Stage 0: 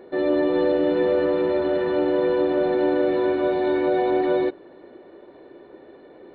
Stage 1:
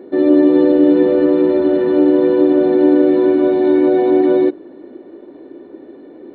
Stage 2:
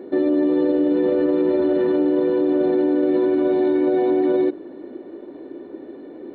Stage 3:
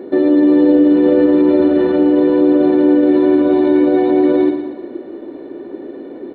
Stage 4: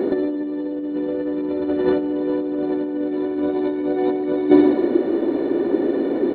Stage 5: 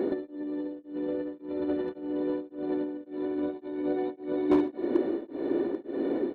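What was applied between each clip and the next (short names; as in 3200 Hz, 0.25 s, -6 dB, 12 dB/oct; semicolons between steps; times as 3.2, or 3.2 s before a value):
bell 280 Hz +14.5 dB 1.1 oct
limiter -12 dBFS, peak gain reduction 10 dB
feedback echo 0.115 s, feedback 52%, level -8 dB; gain +6 dB
negative-ratio compressor -18 dBFS, ratio -0.5; gain +1 dB
overloaded stage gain 8 dB; beating tremolo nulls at 1.8 Hz; gain -7 dB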